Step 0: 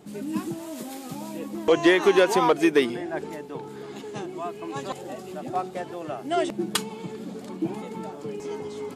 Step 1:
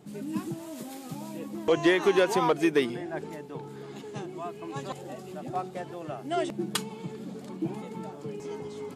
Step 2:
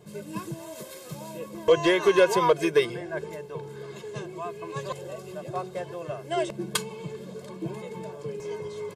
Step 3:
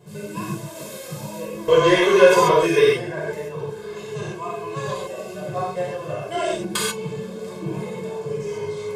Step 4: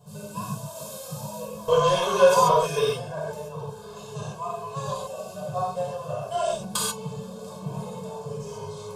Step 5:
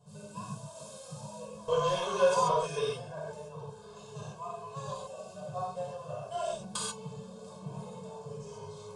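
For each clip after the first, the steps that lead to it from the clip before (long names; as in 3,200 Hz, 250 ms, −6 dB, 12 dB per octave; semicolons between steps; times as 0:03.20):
parametric band 140 Hz +6.5 dB 0.68 octaves; level −4.5 dB
comb filter 1.9 ms, depth 95%
reverb whose tail is shaped and stops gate 160 ms flat, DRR −7 dB; level −1 dB
phaser with its sweep stopped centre 820 Hz, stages 4
downsampling to 22,050 Hz; level −8.5 dB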